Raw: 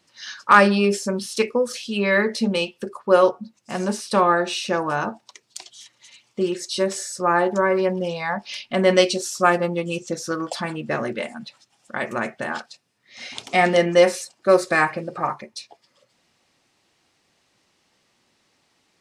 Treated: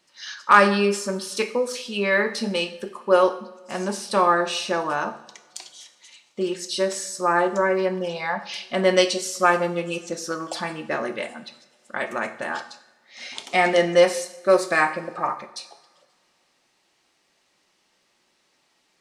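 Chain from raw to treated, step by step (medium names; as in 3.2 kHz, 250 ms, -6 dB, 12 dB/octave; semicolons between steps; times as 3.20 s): peaking EQ 93 Hz -9.5 dB 2.4 oct; reverberation, pre-delay 3 ms, DRR 8 dB; trim -1 dB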